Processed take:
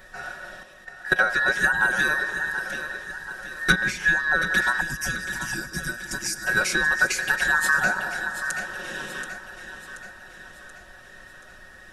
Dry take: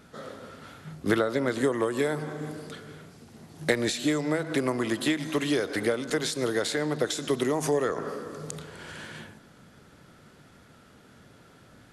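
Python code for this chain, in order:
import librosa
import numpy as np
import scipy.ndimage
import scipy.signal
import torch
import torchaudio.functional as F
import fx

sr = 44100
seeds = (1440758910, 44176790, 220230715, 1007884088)

y = fx.band_invert(x, sr, width_hz=2000)
y = y + 0.99 * np.pad(y, (int(5.4 * sr / 1000.0), 0))[:len(y)]
y = fx.dmg_noise_colour(y, sr, seeds[0], colour='brown', level_db=-56.0)
y = fx.level_steps(y, sr, step_db=17, at=(0.63, 1.19))
y = fx.high_shelf(y, sr, hz=3000.0, db=-10.5, at=(3.72, 4.45))
y = fx.spec_box(y, sr, start_s=4.81, length_s=1.66, low_hz=350.0, high_hz=4600.0, gain_db=-14)
y = fx.echo_feedback(y, sr, ms=730, feedback_pct=51, wet_db=-10.5)
y = y * 10.0 ** (2.0 / 20.0)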